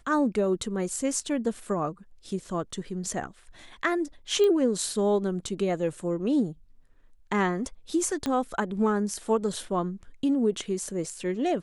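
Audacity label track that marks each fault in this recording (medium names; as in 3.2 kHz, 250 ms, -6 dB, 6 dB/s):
4.440000	4.440000	pop -16 dBFS
8.260000	8.260000	pop -15 dBFS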